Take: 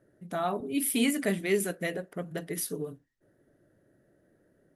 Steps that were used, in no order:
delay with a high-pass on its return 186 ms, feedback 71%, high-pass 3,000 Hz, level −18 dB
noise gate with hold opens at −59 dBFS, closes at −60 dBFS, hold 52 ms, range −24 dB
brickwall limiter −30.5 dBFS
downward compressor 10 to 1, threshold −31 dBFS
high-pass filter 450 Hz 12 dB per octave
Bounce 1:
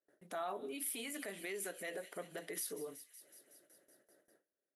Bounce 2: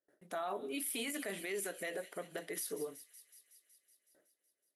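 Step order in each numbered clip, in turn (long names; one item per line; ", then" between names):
delay with a high-pass on its return, then downward compressor, then brickwall limiter, then high-pass filter, then noise gate with hold
high-pass filter, then noise gate with hold, then delay with a high-pass on its return, then brickwall limiter, then downward compressor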